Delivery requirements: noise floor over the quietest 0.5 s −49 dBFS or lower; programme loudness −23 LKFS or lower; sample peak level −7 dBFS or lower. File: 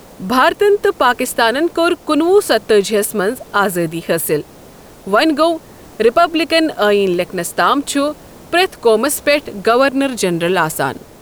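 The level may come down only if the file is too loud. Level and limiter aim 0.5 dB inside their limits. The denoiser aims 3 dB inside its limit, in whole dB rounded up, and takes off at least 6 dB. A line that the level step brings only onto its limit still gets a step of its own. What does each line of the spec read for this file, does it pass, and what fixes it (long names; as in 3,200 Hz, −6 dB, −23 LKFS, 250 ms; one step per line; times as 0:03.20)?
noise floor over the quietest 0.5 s −39 dBFS: out of spec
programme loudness −15.0 LKFS: out of spec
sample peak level −1.0 dBFS: out of spec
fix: broadband denoise 6 dB, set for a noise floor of −39 dBFS
level −8.5 dB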